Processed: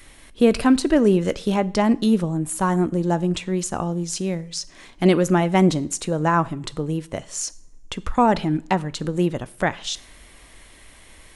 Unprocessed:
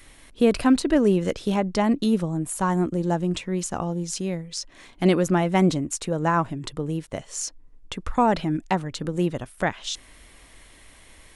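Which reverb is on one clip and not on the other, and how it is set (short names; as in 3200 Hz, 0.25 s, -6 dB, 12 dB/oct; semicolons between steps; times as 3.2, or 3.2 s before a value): two-slope reverb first 0.52 s, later 2.2 s, from -25 dB, DRR 16.5 dB; gain +2.5 dB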